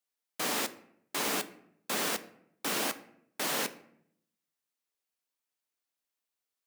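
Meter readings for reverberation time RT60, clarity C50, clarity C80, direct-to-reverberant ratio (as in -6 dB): 0.70 s, 16.0 dB, 18.5 dB, 11.0 dB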